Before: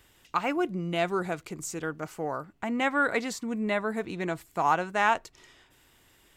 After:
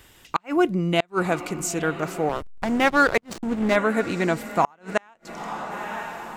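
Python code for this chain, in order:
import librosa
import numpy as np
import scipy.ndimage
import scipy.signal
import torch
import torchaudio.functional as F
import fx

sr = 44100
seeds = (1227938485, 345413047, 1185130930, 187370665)

y = fx.echo_diffused(x, sr, ms=922, feedback_pct=52, wet_db=-15.0)
y = fx.backlash(y, sr, play_db=-27.0, at=(2.29, 3.76))
y = fx.gate_flip(y, sr, shuts_db=-16.0, range_db=-37)
y = y * 10.0 ** (8.5 / 20.0)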